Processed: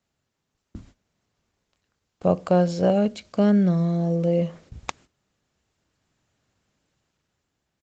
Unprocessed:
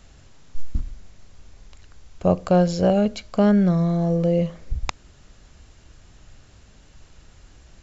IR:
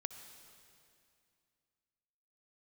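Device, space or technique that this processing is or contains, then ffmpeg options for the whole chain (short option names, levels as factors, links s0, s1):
video call: -filter_complex "[0:a]asplit=3[s0][s1][s2];[s0]afade=t=out:st=0.82:d=0.02[s3];[s1]asplit=2[s4][s5];[s5]adelay=26,volume=0.422[s6];[s4][s6]amix=inputs=2:normalize=0,afade=t=in:st=0.82:d=0.02,afade=t=out:st=2.27:d=0.02[s7];[s2]afade=t=in:st=2.27:d=0.02[s8];[s3][s7][s8]amix=inputs=3:normalize=0,asplit=3[s9][s10][s11];[s9]afade=t=out:st=3.08:d=0.02[s12];[s10]equalizer=f=990:w=0.89:g=-5,afade=t=in:st=3.08:d=0.02,afade=t=out:st=4.26:d=0.02[s13];[s11]afade=t=in:st=4.26:d=0.02[s14];[s12][s13][s14]amix=inputs=3:normalize=0,highpass=130,dynaudnorm=f=170:g=11:m=2,agate=range=0.141:threshold=0.00631:ratio=16:detection=peak,volume=0.596" -ar 48000 -c:a libopus -b:a 20k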